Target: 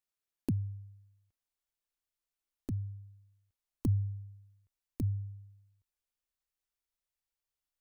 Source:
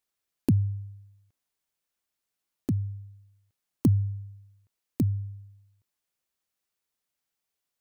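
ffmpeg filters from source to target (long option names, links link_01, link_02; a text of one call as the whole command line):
ffmpeg -i in.wav -af "asubboost=boost=8.5:cutoff=57,volume=-8.5dB" out.wav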